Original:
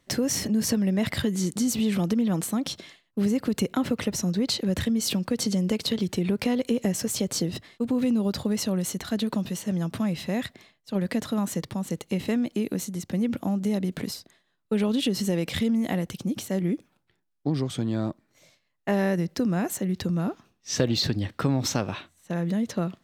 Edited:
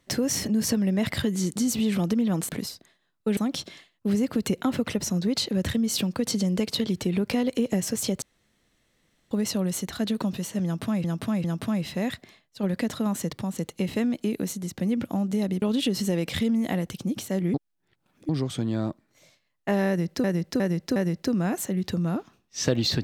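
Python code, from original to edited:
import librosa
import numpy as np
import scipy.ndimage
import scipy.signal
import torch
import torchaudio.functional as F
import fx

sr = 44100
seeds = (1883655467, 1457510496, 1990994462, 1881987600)

y = fx.edit(x, sr, fx.room_tone_fill(start_s=7.34, length_s=1.09),
    fx.repeat(start_s=9.76, length_s=0.4, count=3),
    fx.move(start_s=13.94, length_s=0.88, to_s=2.49),
    fx.reverse_span(start_s=16.74, length_s=0.75),
    fx.repeat(start_s=19.08, length_s=0.36, count=4), tone=tone)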